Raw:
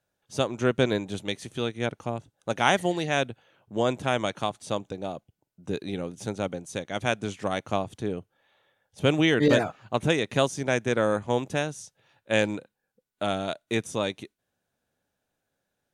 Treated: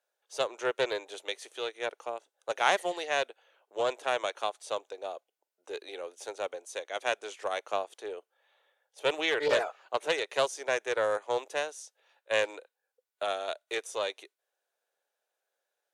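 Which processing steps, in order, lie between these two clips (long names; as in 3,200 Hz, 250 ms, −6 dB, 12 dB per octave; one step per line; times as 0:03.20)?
Butterworth high-pass 420 Hz 36 dB per octave
highs frequency-modulated by the lows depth 0.15 ms
level −3 dB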